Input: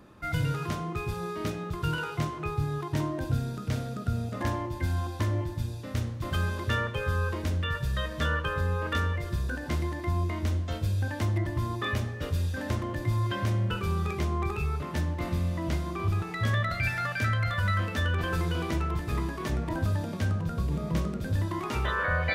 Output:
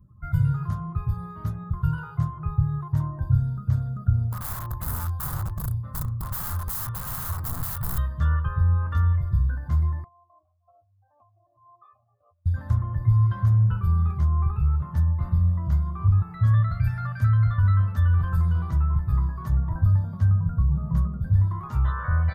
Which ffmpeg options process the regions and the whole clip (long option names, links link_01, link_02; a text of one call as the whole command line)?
ffmpeg -i in.wav -filter_complex "[0:a]asettb=1/sr,asplit=3[link_01][link_02][link_03];[link_01]atrim=end=4.304[link_04];[link_02]atrim=start=4.3:end=7.98,asetpts=PTS-STARTPTS,afade=type=in:duration=0.004:curve=qsin,afade=type=out:start_time=3.676:duration=0.004:curve=qsin,equalizer=frequency=1200:width_type=o:width=0.29:gain=7,aphaser=in_gain=1:out_gain=1:delay=3.8:decay=0.22:speed=1.4:type=triangular,aeval=exprs='(mod(20*val(0)+1,2)-1)/20':channel_layout=same[link_05];[link_03]atrim=start=7.976[link_06];[link_04][link_05]acrossfade=duration=0.004:curve1=hsin:curve2=qsin[link_07];[link_07][link_06]acrossfade=duration=0.004:curve1=qsin:curve2=hsin,asettb=1/sr,asplit=3[link_08][link_09][link_10];[link_08]atrim=end=10.044[link_11];[link_09]atrim=start=10.04:end=12.46,asetpts=PTS-STARTPTS,afade=type=in:duration=0.004:curve=qsin,afade=type=out:start_time=2.416:duration=0.004:curve=qsin,acompressor=threshold=-32dB:ratio=12:attack=3.2:release=140:knee=1:detection=peak,asplit=3[link_12][link_13][link_14];[link_12]bandpass=frequency=730:width_type=q:width=8,volume=0dB[link_15];[link_13]bandpass=frequency=1090:width_type=q:width=8,volume=-6dB[link_16];[link_14]bandpass=frequency=2440:width_type=q:width=8,volume=-9dB[link_17];[link_15][link_16][link_17]amix=inputs=3:normalize=0[link_18];[link_10]atrim=start=12.456[link_19];[link_11][link_18]acrossfade=duration=0.004:curve1=hsin:curve2=qsin[link_20];[link_20][link_19]acrossfade=duration=0.004:curve1=qsin:curve2=hsin,bandreject=frequency=5800:width=22,afftdn=noise_reduction=22:noise_floor=-48,firequalizer=gain_entry='entry(120,0);entry(290,-25);entry(460,-24);entry(1100,-9);entry(2400,-30);entry(3900,-23);entry(13000,0)':delay=0.05:min_phase=1,volume=9dB" out.wav